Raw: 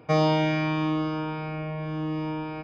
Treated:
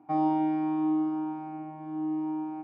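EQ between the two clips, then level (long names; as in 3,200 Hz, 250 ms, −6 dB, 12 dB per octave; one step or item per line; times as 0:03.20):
pair of resonant band-passes 490 Hz, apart 1.4 octaves
parametric band 600 Hz −2 dB 0.22 octaves
+2.5 dB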